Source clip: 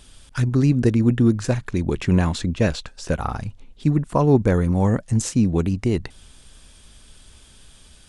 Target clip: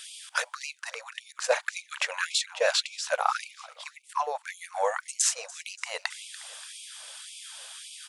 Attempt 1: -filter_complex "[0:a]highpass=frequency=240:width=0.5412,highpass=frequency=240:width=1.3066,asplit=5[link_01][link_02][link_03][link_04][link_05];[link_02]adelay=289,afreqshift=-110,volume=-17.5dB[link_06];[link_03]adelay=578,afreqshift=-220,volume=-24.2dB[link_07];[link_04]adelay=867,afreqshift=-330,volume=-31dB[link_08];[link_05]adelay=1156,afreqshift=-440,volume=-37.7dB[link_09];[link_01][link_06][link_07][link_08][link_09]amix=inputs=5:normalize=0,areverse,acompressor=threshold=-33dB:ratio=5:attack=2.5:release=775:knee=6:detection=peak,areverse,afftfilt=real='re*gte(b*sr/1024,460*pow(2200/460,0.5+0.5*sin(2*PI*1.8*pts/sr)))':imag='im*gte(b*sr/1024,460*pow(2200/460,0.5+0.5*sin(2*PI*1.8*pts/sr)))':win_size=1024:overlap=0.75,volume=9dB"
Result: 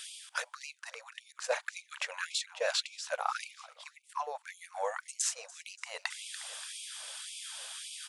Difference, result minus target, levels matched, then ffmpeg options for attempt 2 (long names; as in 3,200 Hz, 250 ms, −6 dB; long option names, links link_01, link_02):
downward compressor: peak gain reduction +7.5 dB
-filter_complex "[0:a]highpass=frequency=240:width=0.5412,highpass=frequency=240:width=1.3066,asplit=5[link_01][link_02][link_03][link_04][link_05];[link_02]adelay=289,afreqshift=-110,volume=-17.5dB[link_06];[link_03]adelay=578,afreqshift=-220,volume=-24.2dB[link_07];[link_04]adelay=867,afreqshift=-330,volume=-31dB[link_08];[link_05]adelay=1156,afreqshift=-440,volume=-37.7dB[link_09];[link_01][link_06][link_07][link_08][link_09]amix=inputs=5:normalize=0,areverse,acompressor=threshold=-23.5dB:ratio=5:attack=2.5:release=775:knee=6:detection=peak,areverse,afftfilt=real='re*gte(b*sr/1024,460*pow(2200/460,0.5+0.5*sin(2*PI*1.8*pts/sr)))':imag='im*gte(b*sr/1024,460*pow(2200/460,0.5+0.5*sin(2*PI*1.8*pts/sr)))':win_size=1024:overlap=0.75,volume=9dB"